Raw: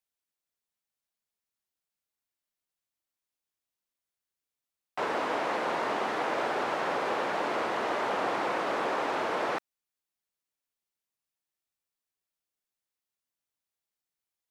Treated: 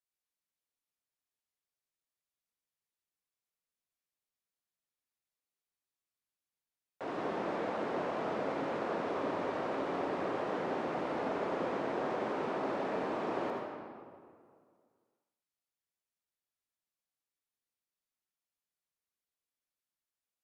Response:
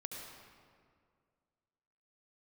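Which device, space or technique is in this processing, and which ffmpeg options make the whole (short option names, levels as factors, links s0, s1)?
slowed and reverbed: -filter_complex "[0:a]asetrate=31311,aresample=44100[s0];[1:a]atrim=start_sample=2205[s1];[s0][s1]afir=irnorm=-1:irlink=0,volume=0.631"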